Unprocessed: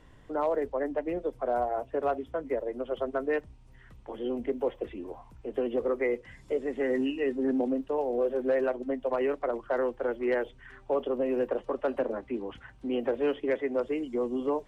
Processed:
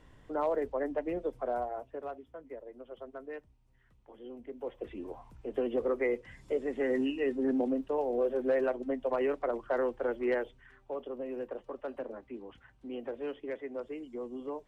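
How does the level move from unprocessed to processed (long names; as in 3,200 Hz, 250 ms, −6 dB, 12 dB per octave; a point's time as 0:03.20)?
0:01.36 −2.5 dB
0:02.23 −14 dB
0:04.46 −14 dB
0:04.99 −2 dB
0:10.30 −2 dB
0:10.79 −10 dB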